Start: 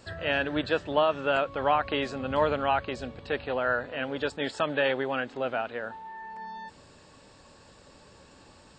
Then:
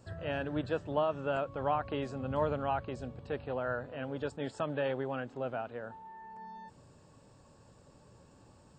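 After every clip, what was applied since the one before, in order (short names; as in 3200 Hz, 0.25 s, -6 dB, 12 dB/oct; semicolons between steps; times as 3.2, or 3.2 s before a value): graphic EQ 125/2000/4000 Hz +8/-7/-8 dB; gain -6 dB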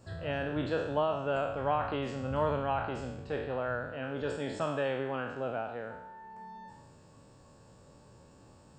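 spectral trails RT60 0.85 s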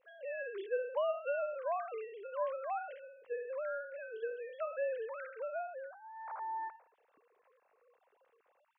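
sine-wave speech; gain -5.5 dB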